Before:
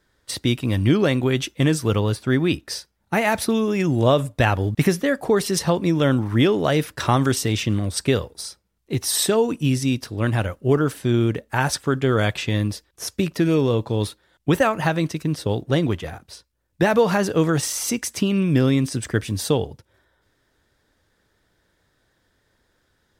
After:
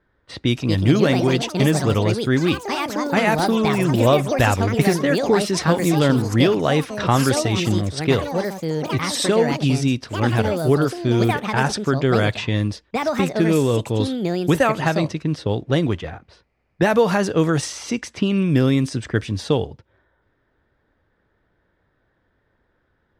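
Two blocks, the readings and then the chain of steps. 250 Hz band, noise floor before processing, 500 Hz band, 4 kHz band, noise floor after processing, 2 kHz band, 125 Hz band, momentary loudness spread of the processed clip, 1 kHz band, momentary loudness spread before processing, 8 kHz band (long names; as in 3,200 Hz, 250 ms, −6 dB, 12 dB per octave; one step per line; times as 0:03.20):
+2.0 dB, −68 dBFS, +2.0 dB, +1.5 dB, −67 dBFS, +2.0 dB, +1.5 dB, 7 LU, +3.0 dB, 7 LU, −2.5 dB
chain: low-pass that shuts in the quiet parts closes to 1,900 Hz, open at −13.5 dBFS
delay with pitch and tempo change per echo 349 ms, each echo +5 semitones, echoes 3, each echo −6 dB
level +1 dB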